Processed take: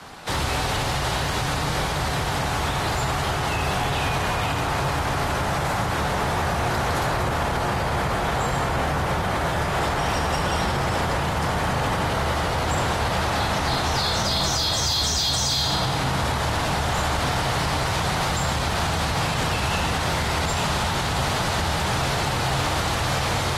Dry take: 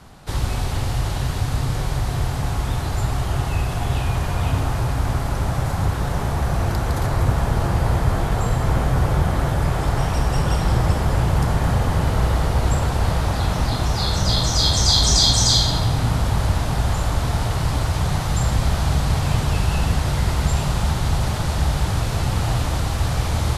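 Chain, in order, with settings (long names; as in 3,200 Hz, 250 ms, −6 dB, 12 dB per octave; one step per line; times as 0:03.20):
brickwall limiter −14.5 dBFS, peak gain reduction 11 dB
mid-hump overdrive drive 16 dB, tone 5,000 Hz, clips at −14.5 dBFS
tuned comb filter 58 Hz, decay 0.45 s, harmonics all, mix 40%
frequency shifter +16 Hz
level +2 dB
AAC 48 kbit/s 48,000 Hz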